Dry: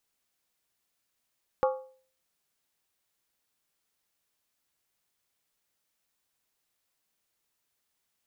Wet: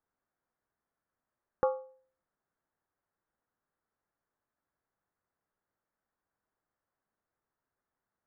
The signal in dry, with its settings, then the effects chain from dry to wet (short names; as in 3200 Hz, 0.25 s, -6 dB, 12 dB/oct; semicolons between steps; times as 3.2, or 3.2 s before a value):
skin hit, lowest mode 522 Hz, decay 0.47 s, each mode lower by 4.5 dB, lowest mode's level -20 dB
steep low-pass 1700 Hz 36 dB/oct; dynamic EQ 970 Hz, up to -3 dB, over -43 dBFS, Q 1.3